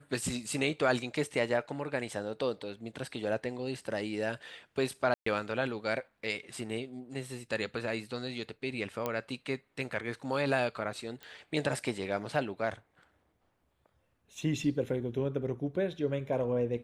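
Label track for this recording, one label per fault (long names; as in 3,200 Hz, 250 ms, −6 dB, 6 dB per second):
5.140000	5.260000	drop-out 124 ms
9.060000	9.060000	click −18 dBFS
11.230000	11.230000	click −29 dBFS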